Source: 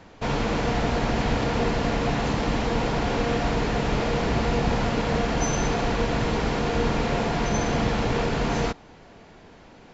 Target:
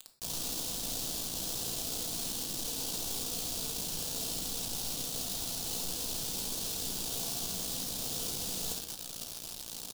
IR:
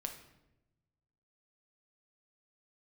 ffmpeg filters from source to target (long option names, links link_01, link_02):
-filter_complex "[0:a]highshelf=frequency=2300:gain=-8,areverse,acompressor=threshold=-41dB:ratio=5,areverse,aeval=exprs='val(0)*sin(2*PI*29*n/s)':channel_layout=same,adynamicsmooth=sensitivity=7.5:basefreq=800,aecho=1:1:61|122|183|244|305:0.501|0.2|0.0802|0.0321|0.0128,acrusher=bits=7:mix=0:aa=0.000001,aexciter=amount=9.8:drive=6.6:freq=3100[link_01];[1:a]atrim=start_sample=2205,afade=type=out:start_time=0.18:duration=0.01,atrim=end_sample=8379[link_02];[link_01][link_02]afir=irnorm=-1:irlink=0"